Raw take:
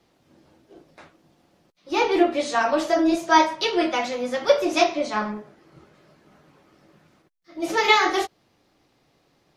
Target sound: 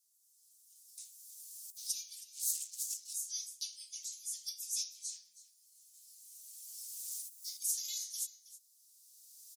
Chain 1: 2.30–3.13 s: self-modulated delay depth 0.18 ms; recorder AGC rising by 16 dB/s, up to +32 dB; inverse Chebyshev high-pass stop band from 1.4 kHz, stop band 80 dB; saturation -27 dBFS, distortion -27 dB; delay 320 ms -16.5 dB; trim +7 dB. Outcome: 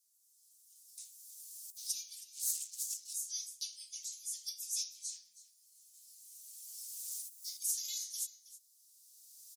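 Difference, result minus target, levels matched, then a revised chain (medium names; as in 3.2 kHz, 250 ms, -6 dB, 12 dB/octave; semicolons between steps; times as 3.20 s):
saturation: distortion +17 dB
2.30–3.13 s: self-modulated delay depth 0.18 ms; recorder AGC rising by 16 dB/s, up to +32 dB; inverse Chebyshev high-pass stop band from 1.4 kHz, stop band 80 dB; saturation -17.5 dBFS, distortion -44 dB; delay 320 ms -16.5 dB; trim +7 dB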